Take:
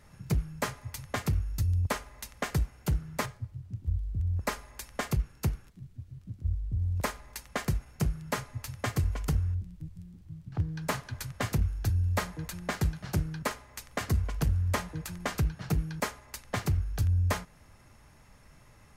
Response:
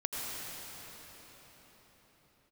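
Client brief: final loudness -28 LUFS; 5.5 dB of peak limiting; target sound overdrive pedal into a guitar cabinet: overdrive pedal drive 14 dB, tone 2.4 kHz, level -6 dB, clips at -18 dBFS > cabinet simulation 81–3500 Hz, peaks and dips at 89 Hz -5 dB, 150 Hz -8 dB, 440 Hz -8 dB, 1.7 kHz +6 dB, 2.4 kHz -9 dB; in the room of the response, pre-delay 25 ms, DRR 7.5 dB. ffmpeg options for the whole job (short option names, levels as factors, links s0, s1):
-filter_complex "[0:a]alimiter=limit=0.0841:level=0:latency=1,asplit=2[s0][s1];[1:a]atrim=start_sample=2205,adelay=25[s2];[s1][s2]afir=irnorm=-1:irlink=0,volume=0.237[s3];[s0][s3]amix=inputs=2:normalize=0,asplit=2[s4][s5];[s5]highpass=f=720:p=1,volume=5.01,asoftclip=type=tanh:threshold=0.126[s6];[s4][s6]amix=inputs=2:normalize=0,lowpass=f=2400:p=1,volume=0.501,highpass=81,equalizer=f=89:t=q:w=4:g=-5,equalizer=f=150:t=q:w=4:g=-8,equalizer=f=440:t=q:w=4:g=-8,equalizer=f=1700:t=q:w=4:g=6,equalizer=f=2400:t=q:w=4:g=-9,lowpass=f=3500:w=0.5412,lowpass=f=3500:w=1.3066,volume=2.51"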